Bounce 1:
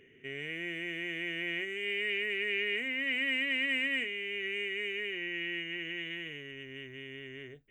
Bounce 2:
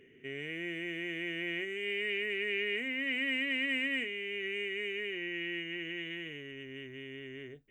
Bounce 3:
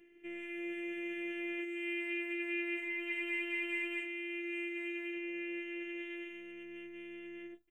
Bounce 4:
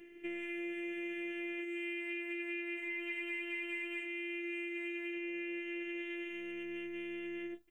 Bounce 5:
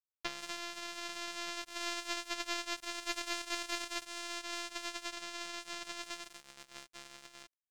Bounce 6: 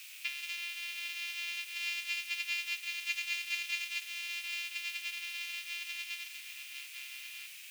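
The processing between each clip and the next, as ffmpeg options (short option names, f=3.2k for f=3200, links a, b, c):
-af "equalizer=f=280:t=o:w=1.7:g=4.5,volume=-2dB"
-af "afftfilt=real='hypot(re,im)*cos(PI*b)':imag='0':win_size=512:overlap=0.75,aecho=1:1:5.9:0.34,volume=-1.5dB"
-af "acompressor=threshold=-44dB:ratio=6,volume=7dB"
-af "acrusher=bits=4:mix=0:aa=0.5,volume=9dB"
-af "aeval=exprs='val(0)+0.5*0.0188*sgn(val(0))':c=same,highpass=f=2.5k:t=q:w=5,volume=-5.5dB"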